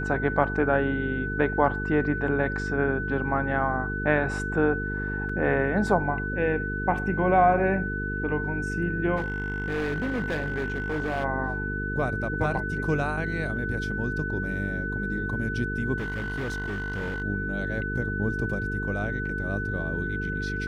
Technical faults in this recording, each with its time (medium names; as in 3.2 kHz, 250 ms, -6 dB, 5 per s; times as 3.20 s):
buzz 50 Hz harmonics 9 -32 dBFS
whine 1.5 kHz -31 dBFS
5.29 s: dropout 4.2 ms
9.16–11.25 s: clipped -24 dBFS
15.98–17.22 s: clipped -27 dBFS